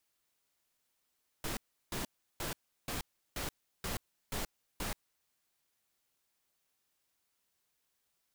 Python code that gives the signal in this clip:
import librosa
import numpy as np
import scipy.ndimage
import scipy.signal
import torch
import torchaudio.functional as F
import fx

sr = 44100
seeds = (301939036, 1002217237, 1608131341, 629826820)

y = fx.noise_burst(sr, seeds[0], colour='pink', on_s=0.13, off_s=0.35, bursts=8, level_db=-37.5)